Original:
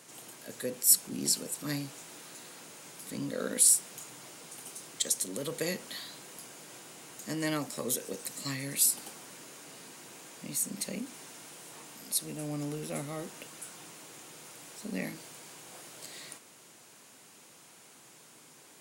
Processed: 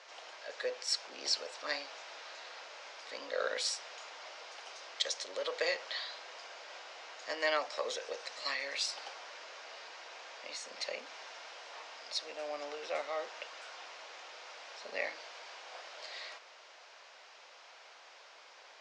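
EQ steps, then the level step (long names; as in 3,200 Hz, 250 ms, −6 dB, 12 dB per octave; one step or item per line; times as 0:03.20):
elliptic band-pass filter 570–5,400 Hz, stop band 70 dB
high-frequency loss of the air 82 metres
+5.5 dB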